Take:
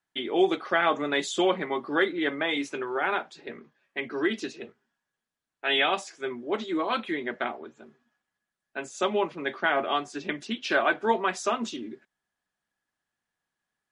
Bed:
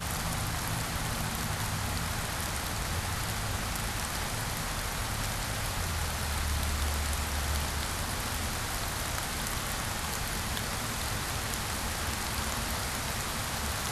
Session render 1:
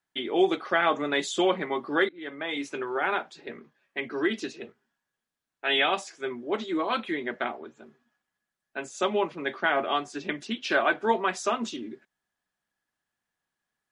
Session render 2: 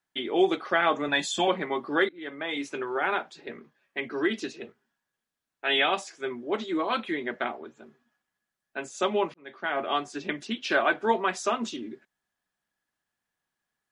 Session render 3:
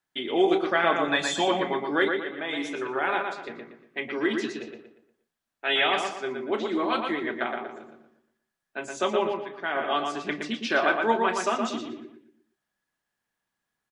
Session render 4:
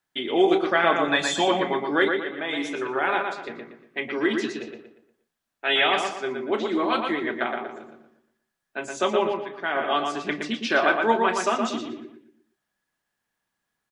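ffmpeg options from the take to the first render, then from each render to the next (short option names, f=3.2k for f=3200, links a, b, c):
-filter_complex "[0:a]asplit=2[a][b];[a]atrim=end=2.09,asetpts=PTS-STARTPTS,afade=t=out:st=2.086:d=0.004:c=hsin:silence=0.0841395[c];[b]atrim=start=2.09,asetpts=PTS-STARTPTS,afade=t=in:d=0.71:silence=0.0841395[d];[c][d]concat=n=2:v=0:a=1"
-filter_complex "[0:a]asettb=1/sr,asplit=3[a][b][c];[a]atrim=end=1.084[d];[b]atrim=start=1.08:end=1.48,asetpts=PTS-STARTPTS,afade=t=in:d=0.004:c=qsin,afade=t=out:st=0.396:d=0.004:c=qsin,aecho=1:1:1.2:0.71,atrim=end_sample=17640[e];[c]atrim=start=1.476[f];[d][e]acrossfade=d=0.004:c1=hsin:c2=qsin[g];[g][f]acrossfade=d=0.004:c1=qsin:c2=hsin,asplit=2[h][i];[h]atrim=end=9.34,asetpts=PTS-STARTPTS,afade=t=out:st=9.336:d=0.004:c=hsin[j];[i]atrim=start=9.34,asetpts=PTS-STARTPTS,afade=t=in:d=0.63[k];[j][k]concat=n=2:v=0:a=1"
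-filter_complex "[0:a]asplit=2[a][b];[b]adelay=31,volume=-13dB[c];[a][c]amix=inputs=2:normalize=0,asplit=2[d][e];[e]adelay=118,lowpass=f=3.2k:p=1,volume=-4dB,asplit=2[f][g];[g]adelay=118,lowpass=f=3.2k:p=1,volume=0.4,asplit=2[h][i];[i]adelay=118,lowpass=f=3.2k:p=1,volume=0.4,asplit=2[j][k];[k]adelay=118,lowpass=f=3.2k:p=1,volume=0.4,asplit=2[l][m];[m]adelay=118,lowpass=f=3.2k:p=1,volume=0.4[n];[d][f][h][j][l][n]amix=inputs=6:normalize=0"
-af "volume=2.5dB"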